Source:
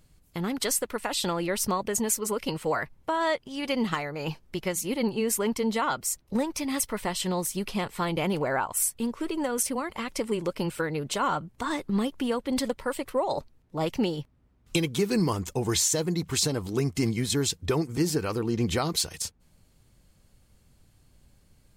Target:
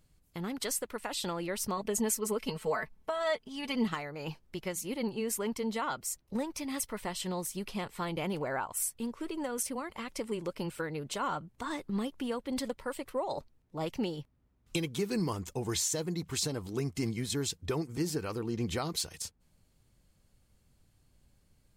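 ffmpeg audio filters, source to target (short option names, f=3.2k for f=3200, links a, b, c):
-filter_complex "[0:a]asettb=1/sr,asplit=3[a][b][c];[a]atrim=end=1.774[d];[b]atrim=start=1.77:end=3.88,asetpts=PTS-STARTPTS,afade=t=in:d=0.004:c=qsin,afade=t=out:st=2.106:d=0.004:c=qsin,aecho=1:1:4.6:0.76,atrim=end_sample=93051[e];[c]atrim=start=3.876[f];[d][e]acrossfade=d=0.004:c1=hsin:c2=qsin[g];[g][f]acrossfade=d=0.004:c1=qsin:c2=hsin,volume=-7dB"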